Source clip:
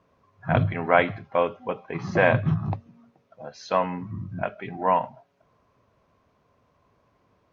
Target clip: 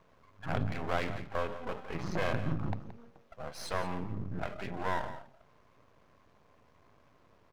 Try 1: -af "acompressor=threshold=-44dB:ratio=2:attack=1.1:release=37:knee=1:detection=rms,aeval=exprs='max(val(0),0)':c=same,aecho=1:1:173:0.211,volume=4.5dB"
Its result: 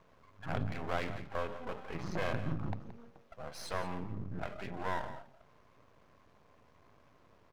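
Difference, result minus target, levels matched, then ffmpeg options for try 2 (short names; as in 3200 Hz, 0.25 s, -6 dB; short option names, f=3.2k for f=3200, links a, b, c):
compressor: peak gain reduction +3 dB
-af "acompressor=threshold=-38dB:ratio=2:attack=1.1:release=37:knee=1:detection=rms,aeval=exprs='max(val(0),0)':c=same,aecho=1:1:173:0.211,volume=4.5dB"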